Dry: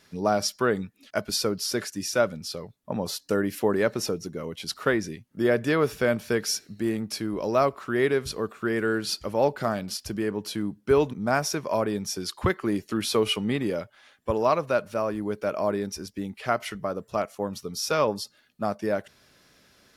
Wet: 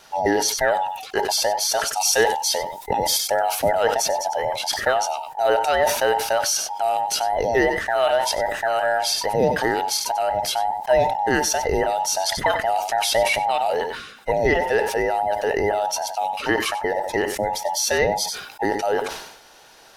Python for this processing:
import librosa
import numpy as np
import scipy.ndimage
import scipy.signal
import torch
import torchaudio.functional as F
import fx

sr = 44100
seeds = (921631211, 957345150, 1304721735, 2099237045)

p1 = fx.band_invert(x, sr, width_hz=1000)
p2 = fx.high_shelf(p1, sr, hz=2600.0, db=10.5, at=(1.97, 3.29))
p3 = fx.over_compress(p2, sr, threshold_db=-32.0, ratio=-1.0)
p4 = p2 + F.gain(torch.from_numpy(p3), -2.0).numpy()
p5 = p4 + 10.0 ** (-16.0 / 20.0) * np.pad(p4, (int(94 * sr / 1000.0), 0))[:len(p4)]
p6 = fx.sustainer(p5, sr, db_per_s=65.0)
y = F.gain(torch.from_numpy(p6), 2.0).numpy()